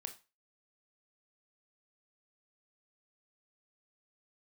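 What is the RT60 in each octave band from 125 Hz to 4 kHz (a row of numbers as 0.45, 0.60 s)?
0.30, 0.25, 0.25, 0.30, 0.30, 0.30 s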